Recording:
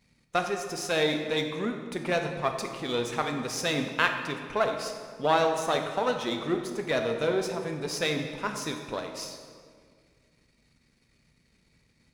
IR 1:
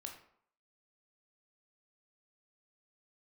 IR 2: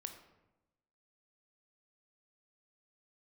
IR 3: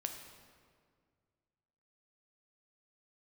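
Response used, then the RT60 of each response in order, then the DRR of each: 3; 0.65 s, 1.0 s, 2.0 s; 2.0 dB, 5.5 dB, 4.0 dB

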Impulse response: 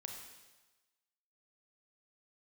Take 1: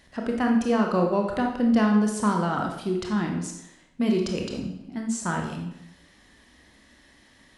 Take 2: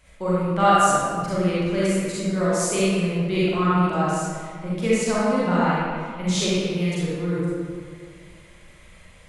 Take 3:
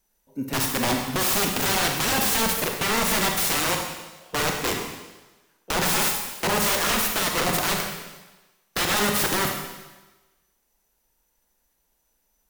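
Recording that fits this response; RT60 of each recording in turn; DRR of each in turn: 3; 0.85 s, 1.9 s, 1.2 s; 1.0 dB, -9.5 dB, 2.0 dB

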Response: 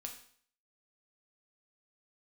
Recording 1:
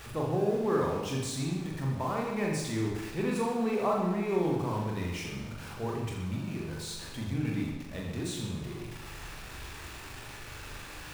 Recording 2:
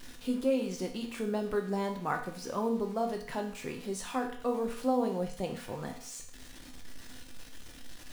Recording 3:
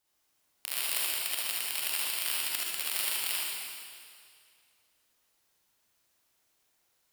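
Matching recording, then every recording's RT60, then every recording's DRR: 2; 1.1 s, 0.55 s, 2.2 s; -2.0 dB, 2.0 dB, -6.5 dB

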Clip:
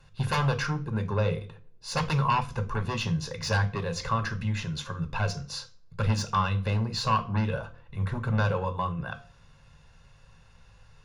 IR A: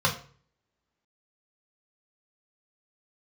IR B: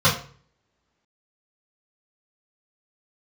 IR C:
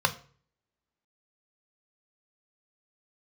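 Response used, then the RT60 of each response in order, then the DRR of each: C; 0.45 s, 0.45 s, 0.45 s; -0.5 dB, -9.5 dB, 7.5 dB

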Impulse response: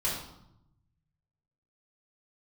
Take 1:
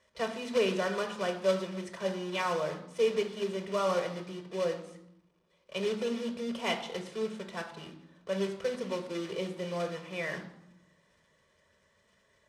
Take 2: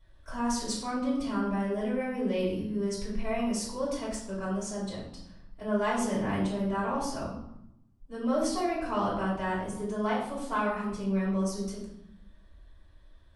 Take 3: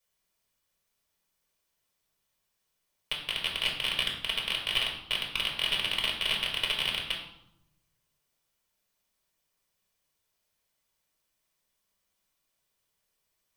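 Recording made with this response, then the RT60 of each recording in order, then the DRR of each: 2; 0.80 s, 0.80 s, 0.80 s; 4.5 dB, -8.0 dB, -1.5 dB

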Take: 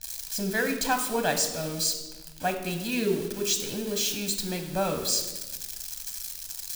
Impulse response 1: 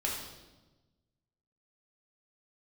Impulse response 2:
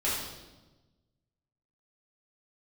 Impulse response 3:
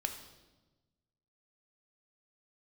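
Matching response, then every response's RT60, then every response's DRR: 3; 1.2 s, 1.2 s, 1.2 s; -3.5 dB, -9.0 dB, 5.0 dB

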